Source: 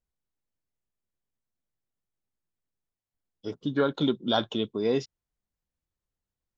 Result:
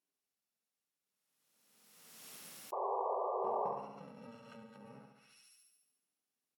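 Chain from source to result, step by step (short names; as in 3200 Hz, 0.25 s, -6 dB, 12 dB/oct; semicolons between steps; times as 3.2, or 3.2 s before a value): FFT order left unsorted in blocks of 128 samples; HPF 190 Hz 24 dB/oct; thin delay 0.145 s, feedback 34%, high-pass 2200 Hz, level -8 dB; compressor 2.5:1, threshold -43 dBFS, peak gain reduction 15.5 dB; painted sound noise, 2.72–3.72, 370–1200 Hz -37 dBFS; feedback echo 68 ms, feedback 55%, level -4 dB; treble ducked by the level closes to 980 Hz, closed at -35.5 dBFS; backwards sustainer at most 32 dB/s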